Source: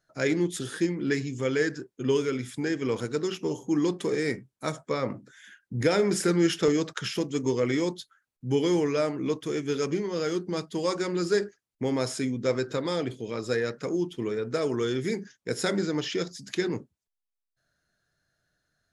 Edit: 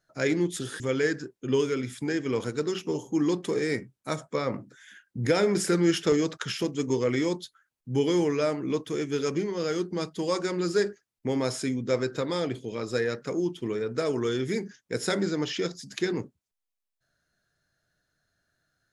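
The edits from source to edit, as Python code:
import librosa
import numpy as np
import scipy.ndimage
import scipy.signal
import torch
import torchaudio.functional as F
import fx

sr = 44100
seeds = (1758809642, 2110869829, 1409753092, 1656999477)

y = fx.edit(x, sr, fx.cut(start_s=0.8, length_s=0.56), tone=tone)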